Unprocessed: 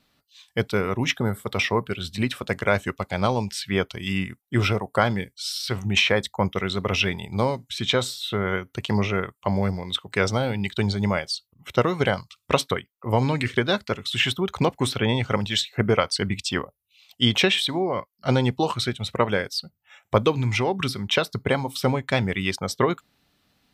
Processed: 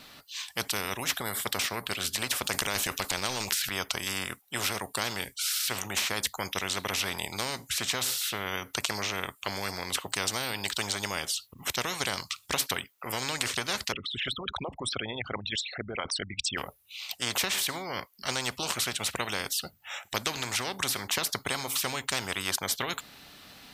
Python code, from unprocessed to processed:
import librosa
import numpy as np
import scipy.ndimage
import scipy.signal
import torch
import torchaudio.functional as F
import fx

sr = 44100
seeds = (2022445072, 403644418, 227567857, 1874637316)

y = fx.transient(x, sr, attack_db=0, sustain_db=10, at=(2.44, 3.78))
y = fx.envelope_sharpen(y, sr, power=3.0, at=(13.91, 16.57), fade=0.02)
y = fx.low_shelf(y, sr, hz=380.0, db=-8.5)
y = fx.spectral_comp(y, sr, ratio=4.0)